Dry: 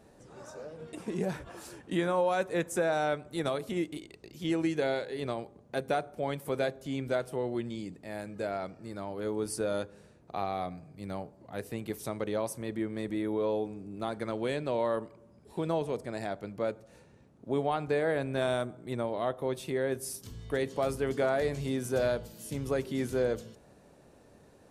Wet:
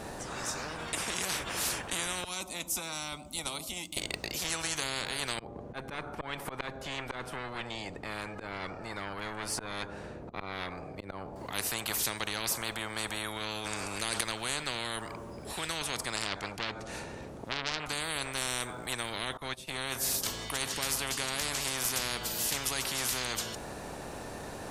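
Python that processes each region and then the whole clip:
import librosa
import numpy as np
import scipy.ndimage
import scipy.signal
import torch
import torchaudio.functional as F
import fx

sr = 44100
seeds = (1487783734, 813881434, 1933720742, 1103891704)

y = fx.chain(x, sr, fx.tone_stack(knobs='5-5-5'),
    fx.fixed_phaser(hz=450.0, stages=6),
    fx.transformer_sat(knee_hz=630.0), at=(2.24, 3.97))
y = fx.chain(y, sr, fx.lowpass(hz=1600.0, slope=6),
    fx.auto_swell(attack_ms=237.0),
    fx.tube_stage(drive_db=28.0, bias=0.4), at=(5.39, 11.36))
y = fx.chain(y, sr, fx.lowpass(hz=11000.0, slope=12),
    fx.env_flatten(amount_pct=100), at=(13.36, 14.21))
y = fx.chain(y, sr, fx.env_lowpass_down(base_hz=2500.0, full_db=-25.0),
    fx.transformer_sat(knee_hz=1700.0), at=(16.16, 17.86))
y = fx.chain(y, sr, fx.brickwall_lowpass(high_hz=13000.0),
    fx.upward_expand(threshold_db=-46.0, expansion=2.5), at=(19.37, 19.78))
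y = fx.low_shelf(y, sr, hz=320.0, db=5.5)
y = fx.spectral_comp(y, sr, ratio=10.0)
y = y * 10.0 ** (2.5 / 20.0)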